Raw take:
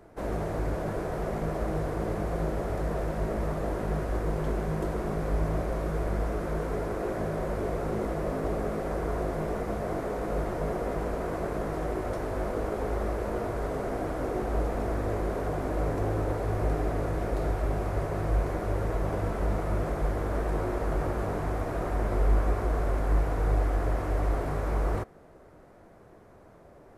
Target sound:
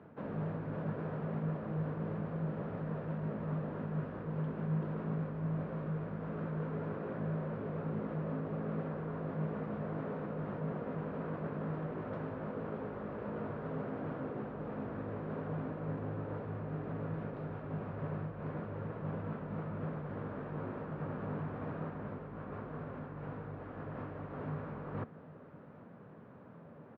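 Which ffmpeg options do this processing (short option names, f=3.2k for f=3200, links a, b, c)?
-af "areverse,acompressor=threshold=-35dB:ratio=6,areverse,highpass=f=100:w=0.5412,highpass=f=100:w=1.3066,equalizer=f=160:t=q:w=4:g=8,equalizer=f=240:t=q:w=4:g=7,equalizer=f=350:t=q:w=4:g=-7,equalizer=f=700:t=q:w=4:g=-7,equalizer=f=2.1k:t=q:w=4:g=-6,lowpass=f=2.9k:w=0.5412,lowpass=f=2.9k:w=1.3066,aecho=1:1:793:0.0944"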